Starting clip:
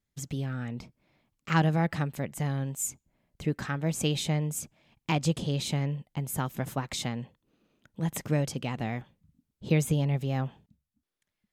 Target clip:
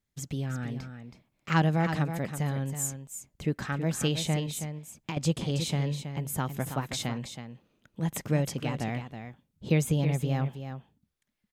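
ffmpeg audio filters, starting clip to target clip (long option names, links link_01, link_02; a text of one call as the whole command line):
ffmpeg -i in.wav -filter_complex "[0:a]asettb=1/sr,asplit=3[link_01][link_02][link_03];[link_01]atrim=end=4.464[link_04];[link_02]atrim=start=4.46:end=5.17,asetpts=PTS-STARTPTS,afade=type=in:duration=0.004:curve=qsin,afade=type=out:start_time=0.706:duration=0.004:curve=qsin,acompressor=threshold=-33dB:ratio=6[link_05];[link_03]atrim=start=5.166[link_06];[link_04][link_05]acrossfade=duration=0.004:curve1=hsin:curve2=qsin[link_07];[link_07][link_06]acrossfade=duration=0.004:curve1=qsin:curve2=hsin,aecho=1:1:323:0.355" out.wav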